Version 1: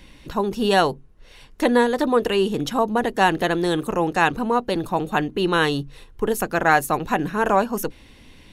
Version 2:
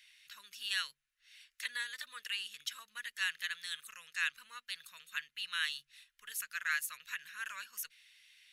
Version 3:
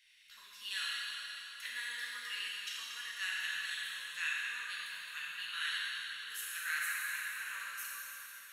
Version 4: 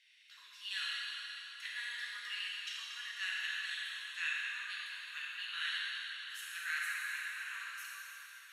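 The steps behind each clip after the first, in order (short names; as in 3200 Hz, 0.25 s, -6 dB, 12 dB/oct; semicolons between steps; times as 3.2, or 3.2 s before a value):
inverse Chebyshev high-pass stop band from 860 Hz, stop band 40 dB; gain -8.5 dB
plate-style reverb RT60 4 s, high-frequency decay 0.9×, DRR -7.5 dB; gain -7 dB
band-pass 2600 Hz, Q 0.54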